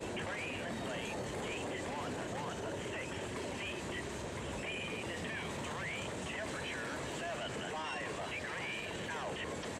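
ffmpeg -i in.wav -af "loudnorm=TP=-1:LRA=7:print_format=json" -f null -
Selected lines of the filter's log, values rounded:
"input_i" : "-39.8",
"input_tp" : "-29.6",
"input_lra" : "0.4",
"input_thresh" : "-49.8",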